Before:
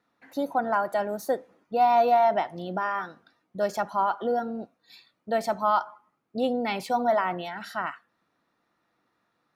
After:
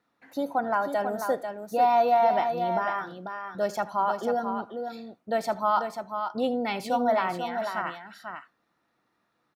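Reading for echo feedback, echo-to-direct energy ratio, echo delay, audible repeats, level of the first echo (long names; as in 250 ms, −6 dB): repeats not evenly spaced, −7.0 dB, 78 ms, 2, −20.0 dB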